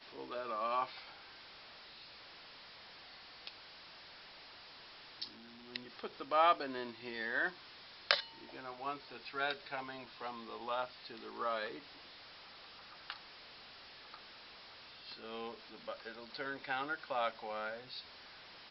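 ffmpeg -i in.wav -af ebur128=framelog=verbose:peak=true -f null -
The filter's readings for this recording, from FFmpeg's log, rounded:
Integrated loudness:
  I:         -39.7 LUFS
  Threshold: -51.6 LUFS
Loudness range:
  LRA:        15.7 LU
  Threshold: -61.5 LUFS
  LRA low:   -52.0 LUFS
  LRA high:  -36.3 LUFS
True peak:
  Peak:       -7.8 dBFS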